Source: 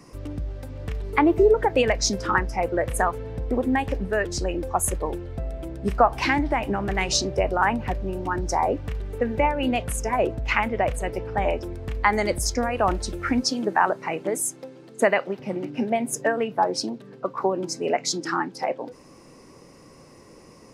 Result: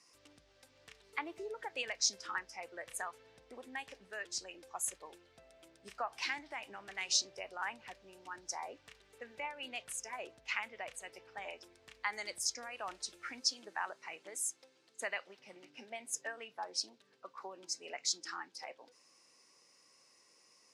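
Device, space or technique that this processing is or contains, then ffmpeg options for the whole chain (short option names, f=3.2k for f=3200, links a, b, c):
piezo pickup straight into a mixer: -af "lowpass=6k,aderivative,volume=-2.5dB"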